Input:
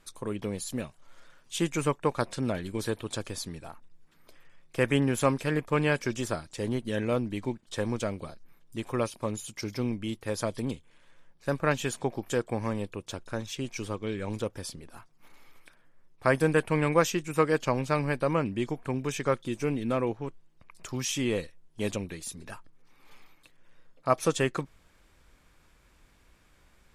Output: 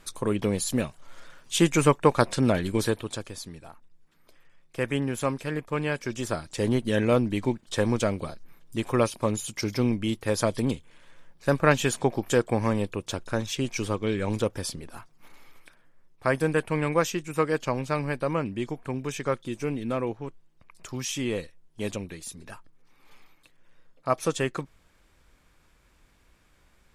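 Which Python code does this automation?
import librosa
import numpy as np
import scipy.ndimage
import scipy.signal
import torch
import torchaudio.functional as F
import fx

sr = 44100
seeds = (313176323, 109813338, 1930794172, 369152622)

y = fx.gain(x, sr, db=fx.line((2.78, 7.5), (3.29, -2.5), (6.0, -2.5), (6.59, 6.0), (14.83, 6.0), (16.27, -0.5)))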